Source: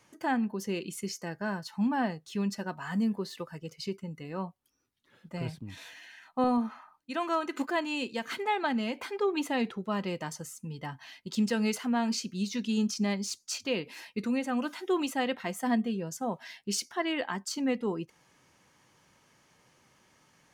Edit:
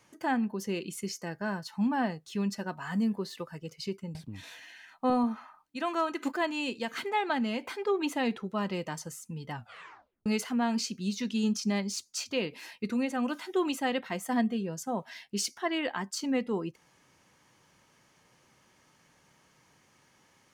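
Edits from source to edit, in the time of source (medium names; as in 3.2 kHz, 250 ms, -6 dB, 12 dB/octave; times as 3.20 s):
4.15–5.49 s: delete
10.87 s: tape stop 0.73 s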